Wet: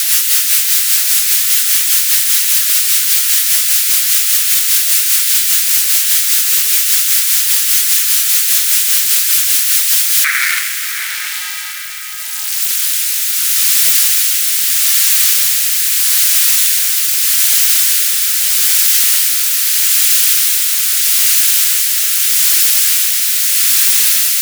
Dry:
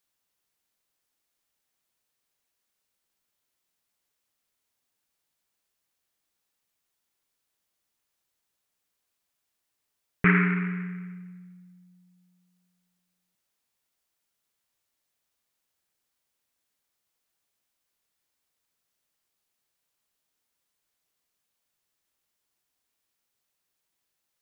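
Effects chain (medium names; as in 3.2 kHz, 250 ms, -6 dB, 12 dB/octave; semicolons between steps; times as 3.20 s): jump at every zero crossing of -21 dBFS; high-pass 1.4 kHz 24 dB/octave; tilt EQ +2.5 dB/octave; rotary cabinet horn 5 Hz, later 0.8 Hz, at 9.89 s; flange 0.4 Hz, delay 2.7 ms, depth 9.2 ms, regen -50%; echo that smears into a reverb 708 ms, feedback 42%, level -10 dB; loudness maximiser +17 dB; trim -1 dB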